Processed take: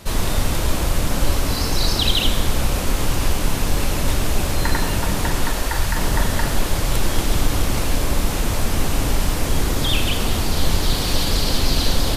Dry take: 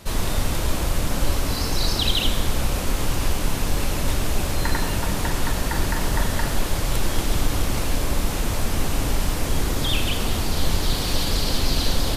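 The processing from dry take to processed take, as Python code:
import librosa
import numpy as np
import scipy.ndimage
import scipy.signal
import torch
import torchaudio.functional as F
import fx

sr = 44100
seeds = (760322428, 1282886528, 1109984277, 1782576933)

y = fx.peak_eq(x, sr, hz=fx.line((5.44, 72.0), (5.95, 410.0)), db=-12.5, octaves=1.1, at=(5.44, 5.95), fade=0.02)
y = F.gain(torch.from_numpy(y), 3.0).numpy()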